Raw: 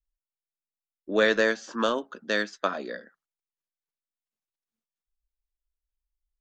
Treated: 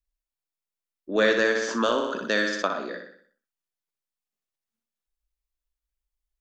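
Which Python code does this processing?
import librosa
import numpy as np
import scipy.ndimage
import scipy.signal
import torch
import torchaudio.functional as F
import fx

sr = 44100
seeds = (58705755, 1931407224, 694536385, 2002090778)

p1 = x + fx.echo_feedback(x, sr, ms=61, feedback_pct=48, wet_db=-6.5, dry=0)
y = fx.env_flatten(p1, sr, amount_pct=50, at=(1.55, 2.65))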